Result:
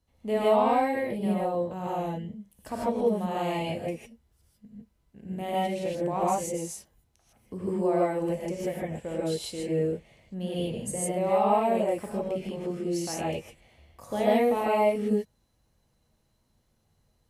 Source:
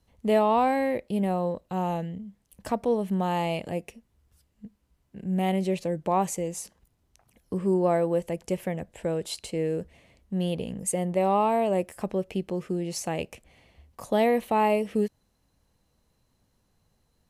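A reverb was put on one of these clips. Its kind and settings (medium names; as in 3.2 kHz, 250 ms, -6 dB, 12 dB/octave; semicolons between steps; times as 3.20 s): gated-style reverb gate 180 ms rising, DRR -6 dB; trim -8 dB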